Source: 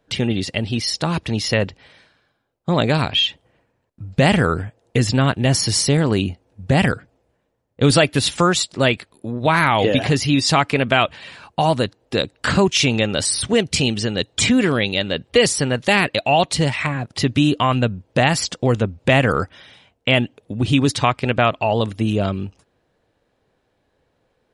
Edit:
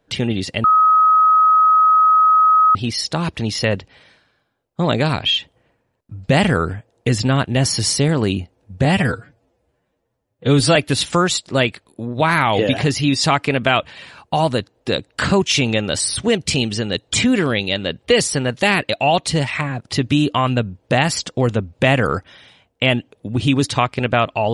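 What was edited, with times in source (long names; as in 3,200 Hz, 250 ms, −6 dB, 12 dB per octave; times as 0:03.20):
0:00.64: insert tone 1,270 Hz −9 dBFS 2.11 s
0:06.74–0:08.01: time-stretch 1.5×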